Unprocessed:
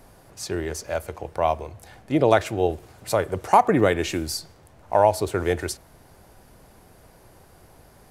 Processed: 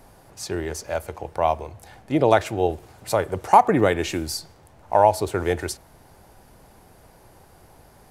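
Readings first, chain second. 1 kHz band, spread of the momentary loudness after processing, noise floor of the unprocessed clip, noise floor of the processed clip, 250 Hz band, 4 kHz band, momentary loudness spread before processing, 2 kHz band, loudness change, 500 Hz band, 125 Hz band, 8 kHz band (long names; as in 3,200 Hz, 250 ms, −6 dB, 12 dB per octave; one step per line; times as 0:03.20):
+2.5 dB, 15 LU, −53 dBFS, −52 dBFS, 0.0 dB, 0.0 dB, 13 LU, 0.0 dB, +1.0 dB, +0.5 dB, 0.0 dB, 0.0 dB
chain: parametric band 850 Hz +4 dB 0.31 octaves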